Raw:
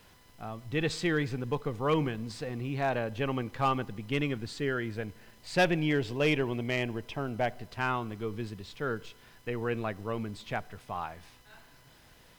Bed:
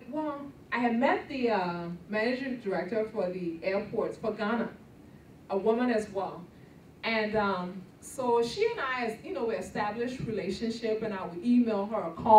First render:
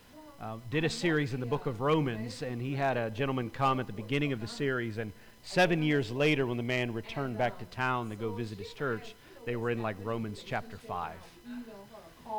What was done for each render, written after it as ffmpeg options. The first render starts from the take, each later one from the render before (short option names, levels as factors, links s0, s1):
-filter_complex "[1:a]volume=0.112[s0];[0:a][s0]amix=inputs=2:normalize=0"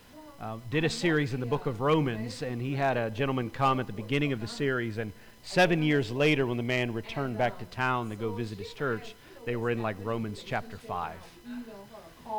-af "volume=1.33"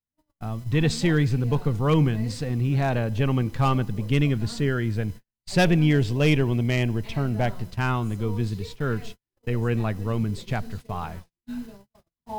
-af "agate=range=0.00355:threshold=0.00708:ratio=16:detection=peak,bass=f=250:g=12,treble=f=4000:g=6"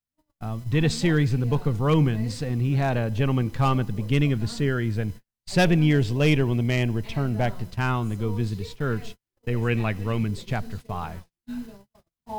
-filter_complex "[0:a]asettb=1/sr,asplit=3[s0][s1][s2];[s0]atrim=end=9.564[s3];[s1]atrim=start=9.56:end=10.28,asetpts=PTS-STARTPTS,afade=t=in:d=0.004:c=qsin,afade=t=out:st=0.716:d=0.004:c=qsin,equalizer=f=2400:w=1.6:g=9.5[s4];[s2]atrim=start=10.276[s5];[s3][s4]acrossfade=d=0.004:c1=hsin:c2=qsin[s6];[s6][s5]acrossfade=d=0.004:c1=qsin:c2=hsin"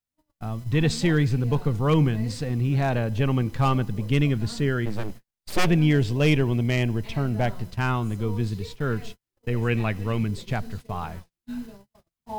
-filter_complex "[0:a]asplit=3[s0][s1][s2];[s0]afade=t=out:st=4.85:d=0.02[s3];[s1]aeval=exprs='abs(val(0))':c=same,afade=t=in:st=4.85:d=0.02,afade=t=out:st=5.66:d=0.02[s4];[s2]afade=t=in:st=5.66:d=0.02[s5];[s3][s4][s5]amix=inputs=3:normalize=0"